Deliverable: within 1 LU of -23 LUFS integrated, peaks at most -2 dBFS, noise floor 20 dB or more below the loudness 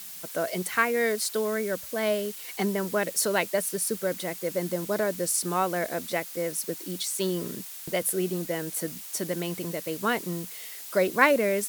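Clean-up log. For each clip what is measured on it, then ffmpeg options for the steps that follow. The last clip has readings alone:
noise floor -41 dBFS; noise floor target -48 dBFS; loudness -28.0 LUFS; peak -4.5 dBFS; loudness target -23.0 LUFS
-> -af "afftdn=nr=7:nf=-41"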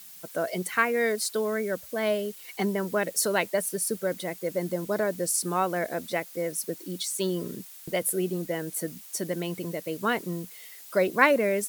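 noise floor -47 dBFS; noise floor target -48 dBFS
-> -af "afftdn=nr=6:nf=-47"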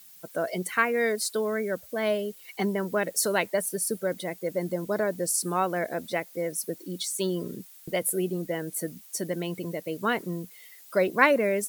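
noise floor -51 dBFS; loudness -28.5 LUFS; peak -4.5 dBFS; loudness target -23.0 LUFS
-> -af "volume=5.5dB,alimiter=limit=-2dB:level=0:latency=1"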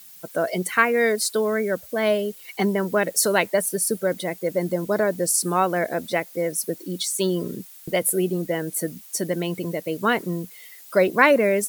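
loudness -23.0 LUFS; peak -2.0 dBFS; noise floor -45 dBFS

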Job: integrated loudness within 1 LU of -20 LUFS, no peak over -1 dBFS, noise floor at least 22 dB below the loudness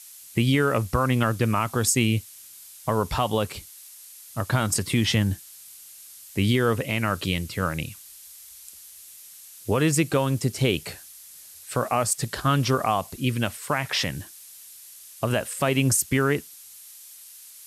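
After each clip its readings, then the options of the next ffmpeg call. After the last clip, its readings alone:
noise floor -46 dBFS; noise floor target -47 dBFS; loudness -24.5 LUFS; peak -10.5 dBFS; loudness target -20.0 LUFS
-> -af "afftdn=nr=6:nf=-46"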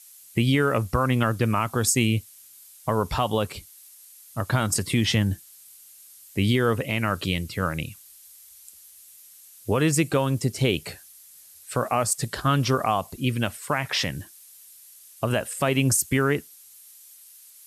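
noise floor -50 dBFS; loudness -24.5 LUFS; peak -10.5 dBFS; loudness target -20.0 LUFS
-> -af "volume=4.5dB"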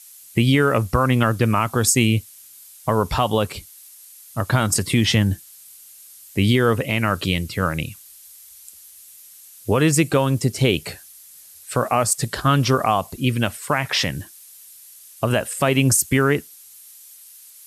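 loudness -20.0 LUFS; peak -6.0 dBFS; noise floor -45 dBFS

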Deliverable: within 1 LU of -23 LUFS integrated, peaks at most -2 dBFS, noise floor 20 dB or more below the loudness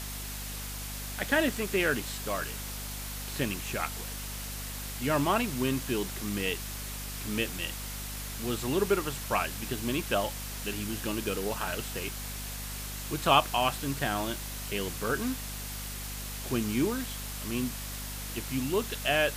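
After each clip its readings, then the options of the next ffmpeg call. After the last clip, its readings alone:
hum 50 Hz; harmonics up to 250 Hz; hum level -38 dBFS; noise floor -38 dBFS; noise floor target -52 dBFS; loudness -31.5 LUFS; peak -8.0 dBFS; loudness target -23.0 LUFS
-> -af "bandreject=f=50:t=h:w=6,bandreject=f=100:t=h:w=6,bandreject=f=150:t=h:w=6,bandreject=f=200:t=h:w=6,bandreject=f=250:t=h:w=6"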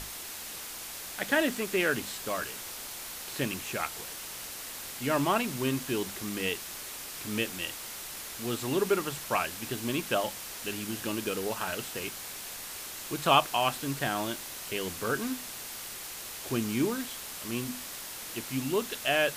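hum none; noise floor -41 dBFS; noise floor target -52 dBFS
-> -af "afftdn=nr=11:nf=-41"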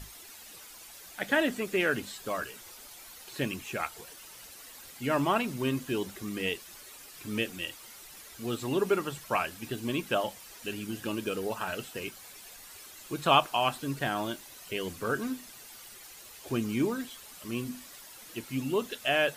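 noise floor -50 dBFS; noise floor target -52 dBFS
-> -af "afftdn=nr=6:nf=-50"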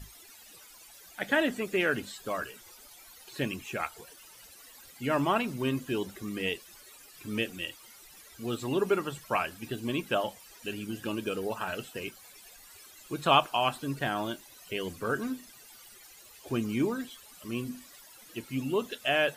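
noise floor -53 dBFS; loudness -32.0 LUFS; peak -8.0 dBFS; loudness target -23.0 LUFS
-> -af "volume=9dB,alimiter=limit=-2dB:level=0:latency=1"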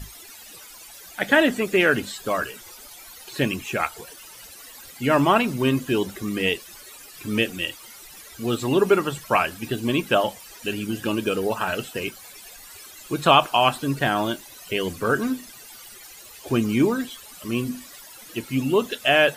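loudness -23.0 LUFS; peak -2.0 dBFS; noise floor -44 dBFS

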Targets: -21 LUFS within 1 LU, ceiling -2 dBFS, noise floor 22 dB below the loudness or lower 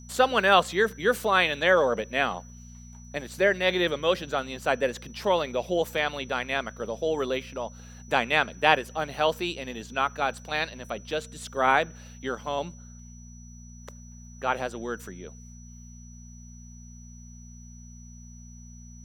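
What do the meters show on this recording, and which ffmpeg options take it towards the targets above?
hum 60 Hz; harmonics up to 240 Hz; hum level -43 dBFS; steady tone 5900 Hz; tone level -52 dBFS; loudness -26.5 LUFS; peak -3.5 dBFS; loudness target -21.0 LUFS
-> -af "bandreject=f=60:t=h:w=4,bandreject=f=120:t=h:w=4,bandreject=f=180:t=h:w=4,bandreject=f=240:t=h:w=4"
-af "bandreject=f=5.9k:w=30"
-af "volume=5.5dB,alimiter=limit=-2dB:level=0:latency=1"

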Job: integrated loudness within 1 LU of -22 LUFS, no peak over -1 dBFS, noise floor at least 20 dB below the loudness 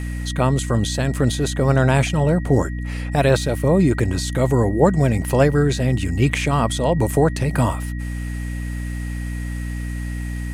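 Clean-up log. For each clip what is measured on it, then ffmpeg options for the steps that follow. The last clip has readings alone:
hum 60 Hz; harmonics up to 300 Hz; hum level -24 dBFS; steady tone 1900 Hz; tone level -39 dBFS; loudness -20.0 LUFS; peak -3.0 dBFS; loudness target -22.0 LUFS
-> -af "bandreject=f=60:t=h:w=6,bandreject=f=120:t=h:w=6,bandreject=f=180:t=h:w=6,bandreject=f=240:t=h:w=6,bandreject=f=300:t=h:w=6"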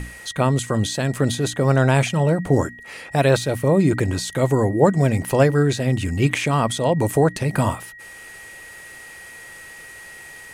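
hum none; steady tone 1900 Hz; tone level -39 dBFS
-> -af "bandreject=f=1.9k:w=30"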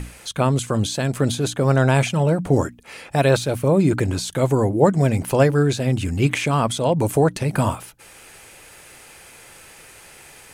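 steady tone none; loudness -20.0 LUFS; peak -2.5 dBFS; loudness target -22.0 LUFS
-> -af "volume=-2dB"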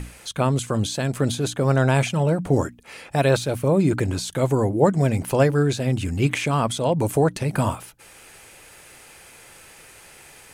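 loudness -22.0 LUFS; peak -4.5 dBFS; noise floor -48 dBFS

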